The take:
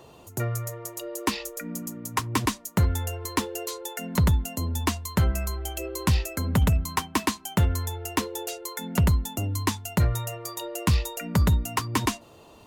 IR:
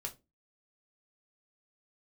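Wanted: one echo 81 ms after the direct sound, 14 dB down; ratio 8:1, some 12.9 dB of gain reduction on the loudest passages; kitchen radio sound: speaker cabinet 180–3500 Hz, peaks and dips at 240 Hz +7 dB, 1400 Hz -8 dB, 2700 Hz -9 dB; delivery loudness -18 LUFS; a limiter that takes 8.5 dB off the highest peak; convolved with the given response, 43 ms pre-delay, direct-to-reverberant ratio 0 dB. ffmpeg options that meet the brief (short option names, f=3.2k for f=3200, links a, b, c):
-filter_complex "[0:a]acompressor=threshold=-31dB:ratio=8,alimiter=level_in=1dB:limit=-24dB:level=0:latency=1,volume=-1dB,aecho=1:1:81:0.2,asplit=2[a][b];[1:a]atrim=start_sample=2205,adelay=43[c];[b][c]afir=irnorm=-1:irlink=0,volume=1dB[d];[a][d]amix=inputs=2:normalize=0,highpass=180,equalizer=f=240:t=q:w=4:g=7,equalizer=f=1.4k:t=q:w=4:g=-8,equalizer=f=2.7k:t=q:w=4:g=-9,lowpass=f=3.5k:w=0.5412,lowpass=f=3.5k:w=1.3066,volume=19dB"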